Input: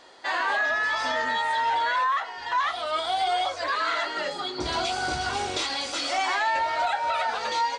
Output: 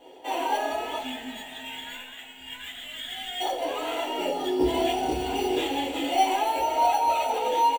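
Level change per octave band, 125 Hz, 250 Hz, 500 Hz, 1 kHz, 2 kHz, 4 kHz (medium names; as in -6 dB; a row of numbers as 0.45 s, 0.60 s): -0.5 dB, +9.5 dB, +4.0 dB, -0.5 dB, -10.0 dB, -2.5 dB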